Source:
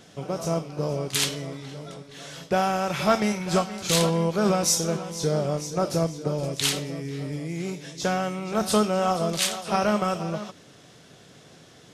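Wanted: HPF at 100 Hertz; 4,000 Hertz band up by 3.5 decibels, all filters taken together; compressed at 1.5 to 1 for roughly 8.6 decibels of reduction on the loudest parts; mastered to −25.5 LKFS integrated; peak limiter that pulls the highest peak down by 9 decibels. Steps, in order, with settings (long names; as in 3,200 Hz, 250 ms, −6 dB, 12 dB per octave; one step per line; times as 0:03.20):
high-pass filter 100 Hz
parametric band 4,000 Hz +4.5 dB
downward compressor 1.5 to 1, threshold −41 dBFS
level +8.5 dB
brickwall limiter −13.5 dBFS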